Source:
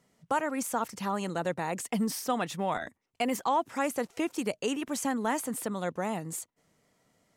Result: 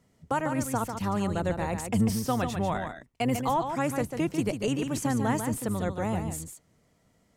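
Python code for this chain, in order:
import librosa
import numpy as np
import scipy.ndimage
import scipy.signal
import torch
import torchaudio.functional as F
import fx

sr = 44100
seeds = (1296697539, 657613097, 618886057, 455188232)

y = fx.octave_divider(x, sr, octaves=1, level_db=-5.0)
y = fx.low_shelf(y, sr, hz=310.0, db=7.0)
y = y + 10.0 ** (-7.0 / 20.0) * np.pad(y, (int(145 * sr / 1000.0), 0))[:len(y)]
y = y * 10.0 ** (-1.0 / 20.0)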